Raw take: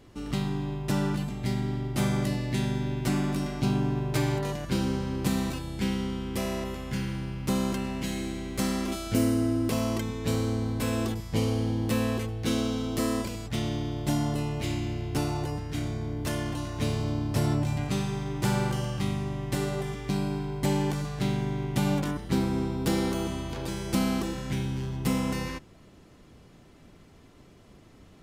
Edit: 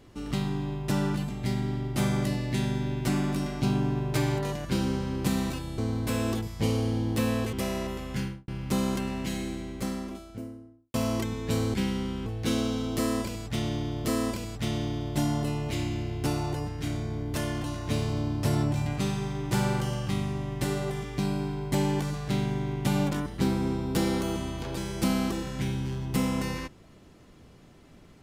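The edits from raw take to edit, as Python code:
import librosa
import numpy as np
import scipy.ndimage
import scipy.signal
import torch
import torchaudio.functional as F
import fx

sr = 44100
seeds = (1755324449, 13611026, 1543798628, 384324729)

y = fx.studio_fade_out(x, sr, start_s=6.96, length_s=0.29)
y = fx.studio_fade_out(y, sr, start_s=7.94, length_s=1.77)
y = fx.edit(y, sr, fx.swap(start_s=5.78, length_s=0.52, other_s=10.51, other_length_s=1.75),
    fx.repeat(start_s=12.96, length_s=1.09, count=2), tone=tone)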